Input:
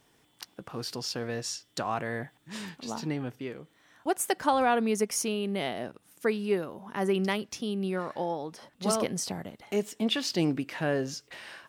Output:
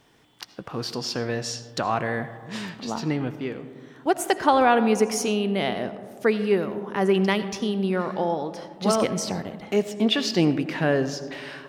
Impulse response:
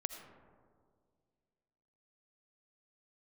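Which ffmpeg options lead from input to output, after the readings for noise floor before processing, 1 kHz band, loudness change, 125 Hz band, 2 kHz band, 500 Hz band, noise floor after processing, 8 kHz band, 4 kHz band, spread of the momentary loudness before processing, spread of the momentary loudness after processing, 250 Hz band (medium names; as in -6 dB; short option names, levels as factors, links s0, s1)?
-66 dBFS, +6.5 dB, +6.0 dB, +7.0 dB, +6.5 dB, +7.0 dB, -49 dBFS, +1.5 dB, +5.5 dB, 14 LU, 13 LU, +6.5 dB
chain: -filter_complex "[0:a]asplit=2[s0][s1];[1:a]atrim=start_sample=2205,lowpass=6600[s2];[s1][s2]afir=irnorm=-1:irlink=0,volume=1.26[s3];[s0][s3]amix=inputs=2:normalize=0"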